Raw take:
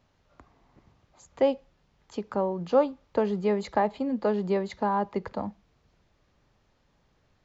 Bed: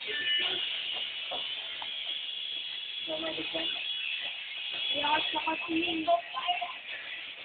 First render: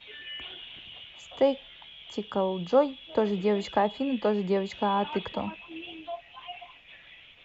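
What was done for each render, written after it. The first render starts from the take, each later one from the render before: add bed -11 dB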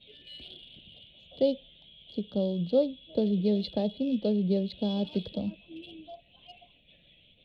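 local Wiener filter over 9 samples; FFT filter 120 Hz 0 dB, 180 Hz +5 dB, 380 Hz -4 dB, 590 Hz -2 dB, 1 kHz -27 dB, 1.9 kHz -21 dB, 4.2 kHz +12 dB, 6.9 kHz -21 dB, 11 kHz -16 dB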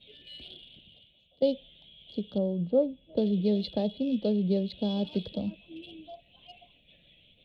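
0.55–1.42 s: fade out, to -19 dB; 2.38–3.17 s: low-pass 1.5 kHz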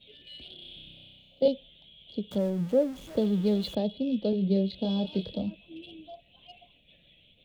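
0.55–1.48 s: flutter echo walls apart 5.4 m, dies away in 1.4 s; 2.31–3.75 s: jump at every zero crossing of -41.5 dBFS; 4.30–5.43 s: doubling 26 ms -6 dB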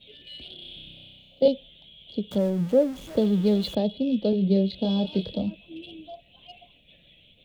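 trim +4 dB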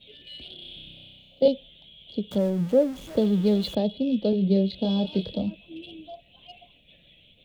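no audible change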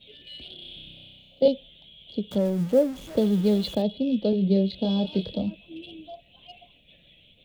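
2.45–3.82 s: short-mantissa float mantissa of 4-bit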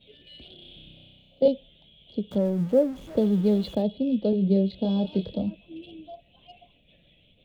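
treble shelf 2.1 kHz -9 dB

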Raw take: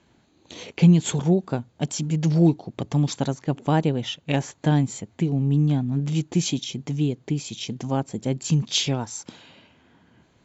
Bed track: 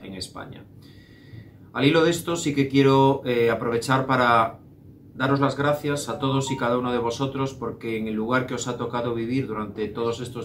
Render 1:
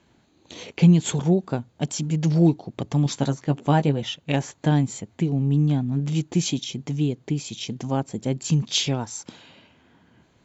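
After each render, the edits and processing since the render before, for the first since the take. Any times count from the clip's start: 3.04–4.03 s: doubling 14 ms -7 dB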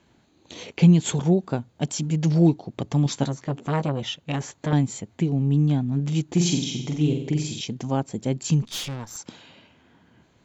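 3.26–4.73 s: transformer saturation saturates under 970 Hz; 6.24–7.61 s: flutter echo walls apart 7.9 m, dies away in 0.65 s; 8.62–9.17 s: valve stage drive 28 dB, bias 0.75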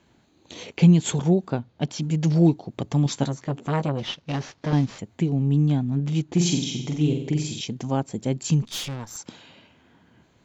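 1.50–2.02 s: low-pass 5.4 kHz 24 dB/octave; 3.98–4.99 s: CVSD coder 32 kbps; 5.95–6.39 s: distance through air 67 m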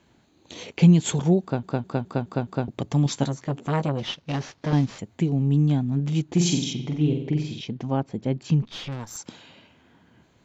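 1.42 s: stutter in place 0.21 s, 6 plays; 6.73–8.92 s: distance through air 200 m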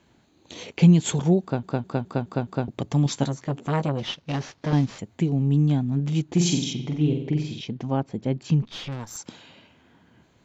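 no audible change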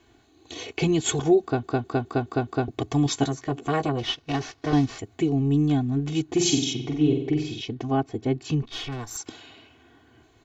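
comb 2.7 ms, depth 91%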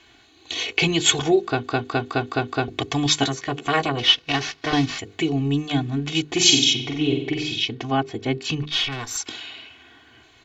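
peaking EQ 2.9 kHz +13 dB 2.6 oct; hum notches 50/100/150/200/250/300/350/400/450/500 Hz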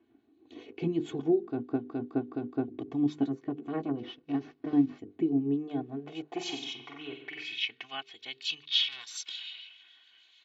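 harmonic tremolo 6.9 Hz, depth 50%, crossover 2.5 kHz; band-pass sweep 270 Hz -> 3.5 kHz, 5.24–8.20 s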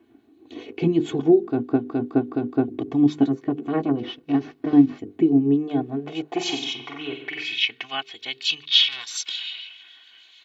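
trim +10 dB

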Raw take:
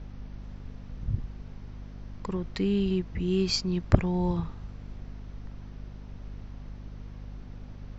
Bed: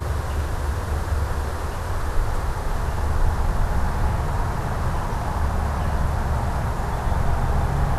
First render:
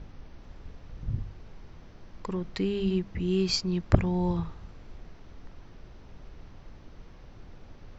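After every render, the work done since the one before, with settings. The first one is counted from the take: de-hum 50 Hz, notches 5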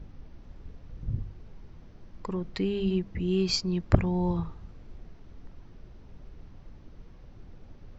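noise reduction 6 dB, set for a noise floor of -50 dBFS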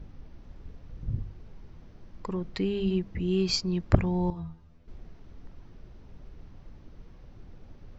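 4.30–4.88 s: inharmonic resonator 81 Hz, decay 0.31 s, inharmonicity 0.002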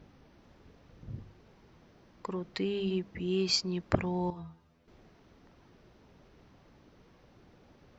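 high-pass 330 Hz 6 dB/octave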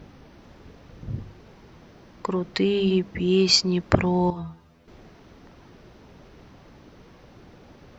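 trim +10.5 dB; peak limiter -1 dBFS, peak gain reduction 2.5 dB

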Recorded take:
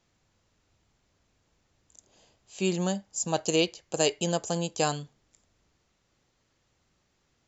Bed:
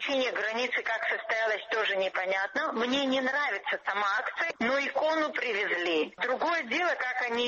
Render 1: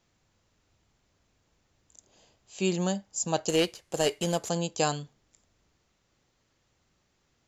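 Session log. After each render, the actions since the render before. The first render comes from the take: 3.49–4.49 s: CVSD coder 64 kbps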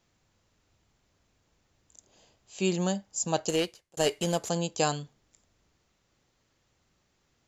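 3.44–3.97 s: fade out linear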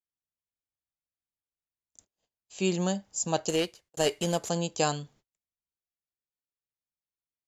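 gate -57 dBFS, range -35 dB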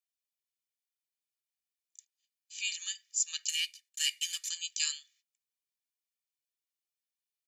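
steep high-pass 2 kHz 36 dB/octave; comb 1.7 ms, depth 78%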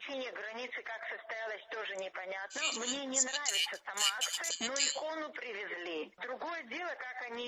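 add bed -12 dB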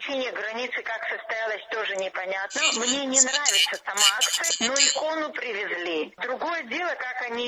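trim +12 dB

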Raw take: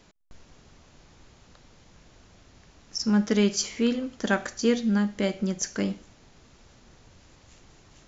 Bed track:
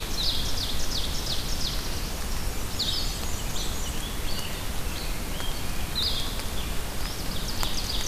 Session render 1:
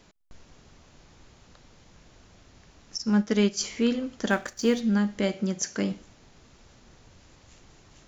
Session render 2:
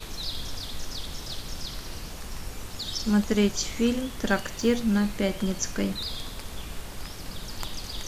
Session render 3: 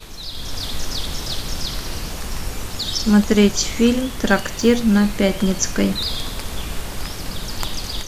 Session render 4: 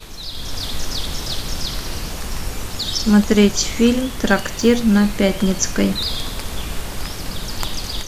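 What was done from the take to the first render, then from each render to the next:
2.97–3.61 s: upward expansion, over -33 dBFS; 4.30–4.81 s: companding laws mixed up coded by A; 5.34–5.92 s: high-pass 100 Hz
add bed track -7 dB
level rider gain up to 10 dB
trim +1 dB; peak limiter -3 dBFS, peak gain reduction 1.5 dB

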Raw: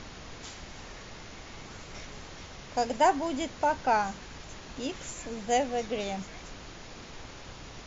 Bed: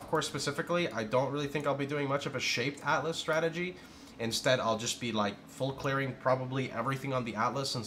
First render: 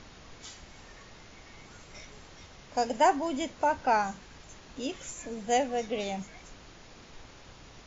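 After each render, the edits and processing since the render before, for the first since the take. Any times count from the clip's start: noise print and reduce 6 dB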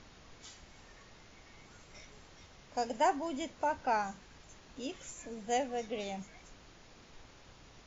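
trim -6 dB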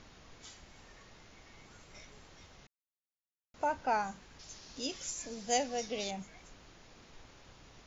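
2.67–3.54 s: mute; 4.39–6.11 s: peaking EQ 5.2 kHz +13.5 dB 0.95 oct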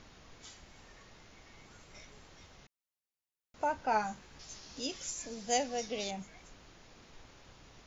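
3.90–4.80 s: doubling 14 ms -5 dB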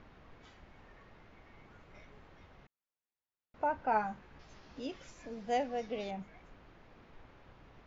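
low-pass 2.1 kHz 12 dB/octave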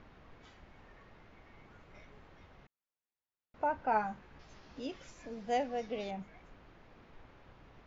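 no audible change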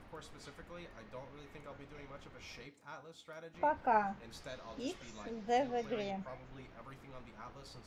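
add bed -20.5 dB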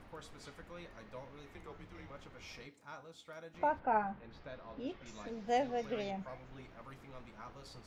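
1.54–2.10 s: frequency shift -110 Hz; 3.79–5.06 s: distance through air 310 m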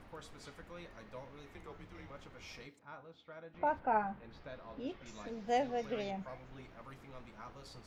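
2.79–3.67 s: distance through air 260 m

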